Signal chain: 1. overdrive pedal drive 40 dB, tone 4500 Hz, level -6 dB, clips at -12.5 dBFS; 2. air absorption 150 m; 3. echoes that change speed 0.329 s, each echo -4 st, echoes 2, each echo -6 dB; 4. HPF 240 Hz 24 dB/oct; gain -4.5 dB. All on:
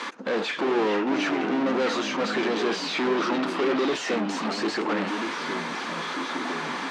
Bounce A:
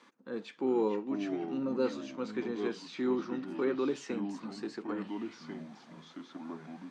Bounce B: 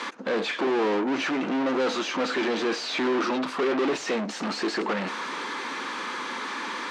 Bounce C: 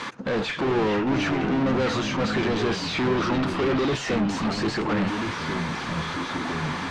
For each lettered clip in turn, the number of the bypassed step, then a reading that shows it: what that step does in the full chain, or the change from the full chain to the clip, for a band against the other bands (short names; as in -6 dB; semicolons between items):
1, crest factor change +2.5 dB; 3, loudness change -1.0 LU; 4, 125 Hz band +14.0 dB